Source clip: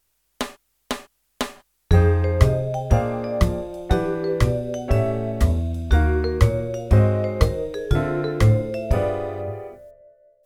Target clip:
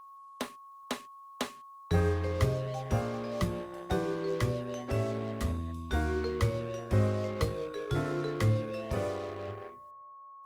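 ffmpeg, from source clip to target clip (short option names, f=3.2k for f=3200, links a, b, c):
-filter_complex "[0:a]highpass=100,adynamicequalizer=threshold=0.0141:dfrequency=680:dqfactor=2.6:tfrequency=680:tqfactor=2.6:attack=5:release=100:ratio=0.375:range=2.5:mode=cutabove:tftype=bell,acrossover=split=150|440|1600[a][b][c][d];[c]acrusher=bits=5:mix=0:aa=0.5[e];[a][b][e][d]amix=inputs=4:normalize=0,aeval=exprs='val(0)+0.0112*sin(2*PI*1100*n/s)':c=same,volume=-8.5dB" -ar 48000 -c:a libopus -b:a 32k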